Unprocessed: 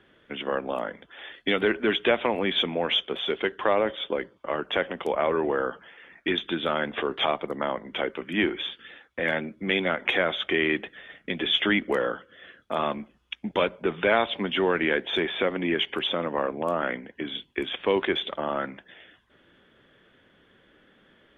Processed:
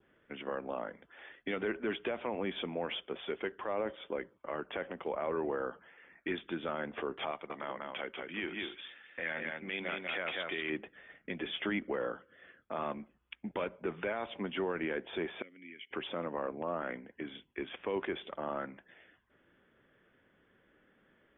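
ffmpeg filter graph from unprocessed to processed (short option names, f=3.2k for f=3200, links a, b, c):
-filter_complex "[0:a]asettb=1/sr,asplit=3[a][b][c];[a]atrim=end=7.314[d];[b]atrim=start=7.31:end=10.7,asetpts=PTS-STARTPTS,afade=t=in:d=0.004:c=qsin,afade=t=out:st=3.386:d=0.004:c=qsin,tiltshelf=f=1.3k:g=-7,aecho=1:1:191:0.631,atrim=end_sample=149499[e];[c]atrim=start=10.696[f];[d][e]acrossfade=d=0.004:c1=hsin:c2=qsin[g];[g][f]acrossfade=d=0.004:c1=qsin:c2=hsin,asettb=1/sr,asplit=3[h][i][j];[h]atrim=end=15.424[k];[i]atrim=start=15.42:end=15.91,asetpts=PTS-STARTPTS,afade=t=in:d=0.004:c=qsin,afade=t=out:st=0.486:d=0.004:c=qsin,asplit=3[l][m][n];[l]bandpass=f=270:t=q:w=8,volume=0dB[o];[m]bandpass=f=2.29k:t=q:w=8,volume=-6dB[p];[n]bandpass=f=3.01k:t=q:w=8,volume=-9dB[q];[o][p][q]amix=inputs=3:normalize=0,equalizer=f=280:t=o:w=0.93:g=-14[r];[j]atrim=start=15.906[s];[k][r]acrossfade=d=0.004:c1=hsin:c2=qsin[t];[t][s]acrossfade=d=0.004:c1=qsin:c2=hsin,lowpass=f=2.7k:w=0.5412,lowpass=f=2.7k:w=1.3066,adynamicequalizer=threshold=0.00891:dfrequency=1900:dqfactor=1.8:tfrequency=1900:tqfactor=1.8:attack=5:release=100:ratio=0.375:range=2.5:mode=cutabove:tftype=bell,alimiter=limit=-16.5dB:level=0:latency=1:release=25,volume=-8.5dB"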